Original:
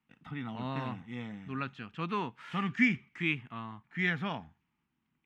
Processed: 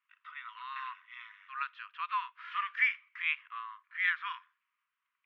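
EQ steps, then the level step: brick-wall FIR high-pass 960 Hz; distance through air 320 m; +5.0 dB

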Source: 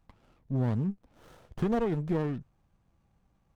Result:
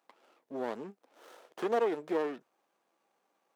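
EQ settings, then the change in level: high-pass 360 Hz 24 dB/octave; +2.5 dB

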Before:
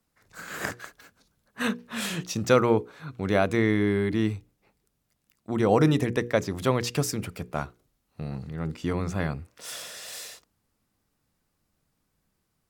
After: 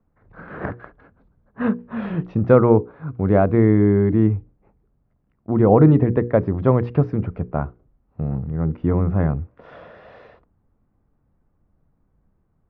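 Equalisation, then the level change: low-pass 1.1 kHz 12 dB/octave; distance through air 280 m; bass shelf 90 Hz +9.5 dB; +7.5 dB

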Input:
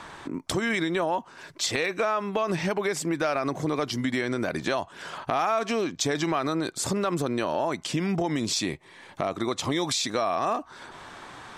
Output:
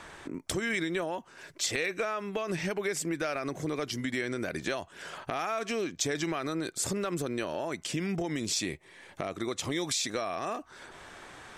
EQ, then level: dynamic bell 690 Hz, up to -4 dB, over -37 dBFS, Q 1.1; ten-band graphic EQ 125 Hz -5 dB, 250 Hz -5 dB, 1 kHz -8 dB, 4 kHz -5 dB; 0.0 dB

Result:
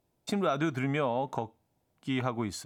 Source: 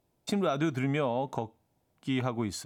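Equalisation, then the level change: dynamic bell 1.3 kHz, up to +4 dB, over -42 dBFS, Q 0.77; -1.5 dB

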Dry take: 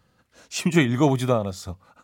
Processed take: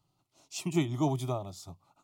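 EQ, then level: static phaser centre 330 Hz, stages 8; -8.0 dB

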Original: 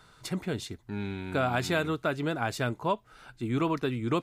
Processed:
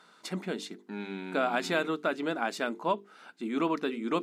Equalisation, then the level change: brick-wall FIR high-pass 170 Hz; treble shelf 11 kHz -11 dB; hum notches 50/100/150/200/250/300/350/400/450 Hz; 0.0 dB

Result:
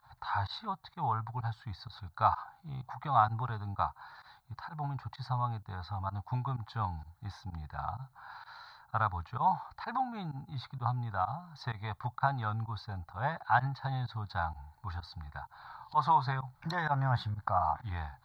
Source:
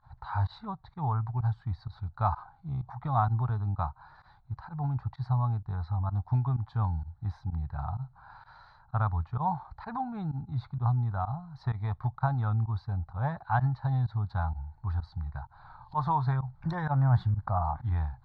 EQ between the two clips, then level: tilt EQ +3.5 dB/octave; +2.5 dB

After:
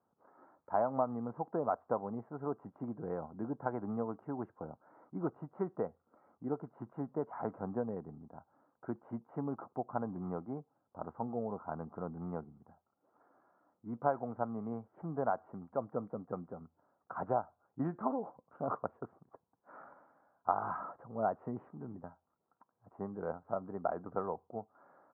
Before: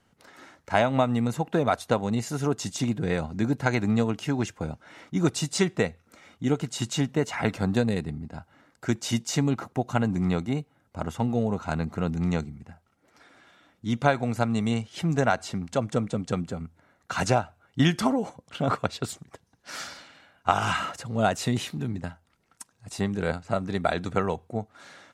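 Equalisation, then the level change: high-pass 600 Hz 6 dB/octave; steep low-pass 1.2 kHz 36 dB/octave; distance through air 160 m; -5.0 dB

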